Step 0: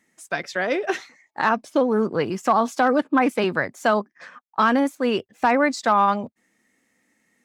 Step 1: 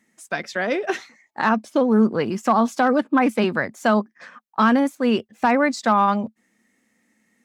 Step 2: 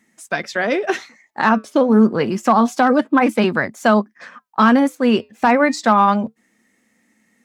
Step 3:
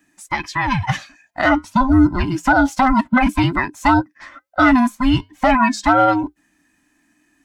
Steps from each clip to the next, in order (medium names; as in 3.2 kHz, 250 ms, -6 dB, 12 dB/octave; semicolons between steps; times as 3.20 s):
peaking EQ 220 Hz +8.5 dB 0.26 oct
flange 0.28 Hz, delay 0.8 ms, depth 5.4 ms, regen -86%; trim +8.5 dB
every band turned upside down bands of 500 Hz